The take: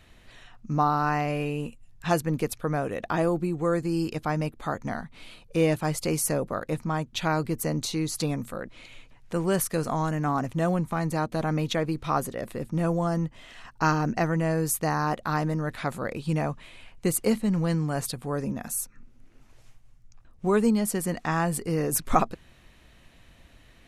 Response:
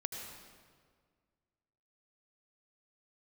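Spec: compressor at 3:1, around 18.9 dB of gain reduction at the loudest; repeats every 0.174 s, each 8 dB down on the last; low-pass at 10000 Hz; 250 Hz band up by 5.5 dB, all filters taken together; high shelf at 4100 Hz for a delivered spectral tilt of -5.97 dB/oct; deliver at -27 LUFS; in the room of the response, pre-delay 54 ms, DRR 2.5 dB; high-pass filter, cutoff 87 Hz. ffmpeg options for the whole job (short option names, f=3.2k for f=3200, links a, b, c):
-filter_complex "[0:a]highpass=87,lowpass=10k,equalizer=f=250:t=o:g=8.5,highshelf=f=4.1k:g=-6.5,acompressor=threshold=-39dB:ratio=3,aecho=1:1:174|348|522|696|870:0.398|0.159|0.0637|0.0255|0.0102,asplit=2[a][b];[1:a]atrim=start_sample=2205,adelay=54[c];[b][c]afir=irnorm=-1:irlink=0,volume=-3dB[d];[a][d]amix=inputs=2:normalize=0,volume=9dB"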